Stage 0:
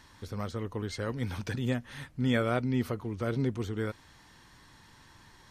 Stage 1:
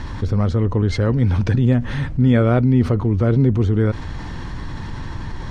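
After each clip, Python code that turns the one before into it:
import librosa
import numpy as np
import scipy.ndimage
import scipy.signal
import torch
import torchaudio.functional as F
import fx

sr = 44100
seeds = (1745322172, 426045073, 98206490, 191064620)

y = scipy.signal.sosfilt(scipy.signal.butter(2, 7400.0, 'lowpass', fs=sr, output='sos'), x)
y = fx.tilt_eq(y, sr, slope=-3.0)
y = fx.env_flatten(y, sr, amount_pct=50)
y = y * librosa.db_to_amplitude(6.0)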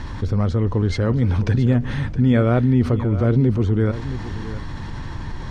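y = x + 10.0 ** (-13.5 / 20.0) * np.pad(x, (int(668 * sr / 1000.0), 0))[:len(x)]
y = y * librosa.db_to_amplitude(-1.5)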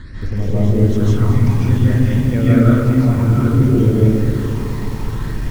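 y = fx.phaser_stages(x, sr, stages=8, low_hz=410.0, high_hz=1400.0, hz=0.59, feedback_pct=5)
y = fx.rev_freeverb(y, sr, rt60_s=1.2, hf_ratio=0.3, predelay_ms=115, drr_db=-8.5)
y = fx.echo_crushed(y, sr, ms=213, feedback_pct=80, bits=5, wet_db=-10)
y = y * librosa.db_to_amplitude(-3.5)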